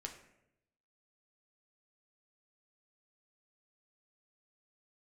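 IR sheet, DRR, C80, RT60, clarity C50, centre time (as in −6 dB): 2.0 dB, 11.5 dB, 0.80 s, 8.5 dB, 19 ms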